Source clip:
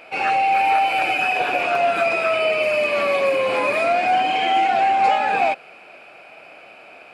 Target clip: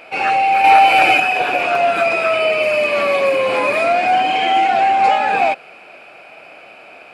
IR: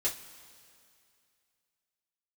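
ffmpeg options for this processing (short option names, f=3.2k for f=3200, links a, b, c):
-filter_complex "[0:a]asettb=1/sr,asplit=3[a][b][c];[a]atrim=end=0.644[d];[b]atrim=start=0.64:end=1.2,asetpts=PTS-STARTPTS,afade=t=in:d=0.004:c=qsin,afade=t=out:st=0.556:d=0.004:c=qsin,acontrast=41[e];[c]atrim=start=1.196[f];[d][e]acrossfade=d=0.004:c1=hsin:c2=qsin[g];[g][f]acrossfade=d=0.004:c1=qsin:c2=hsin,volume=3.5dB"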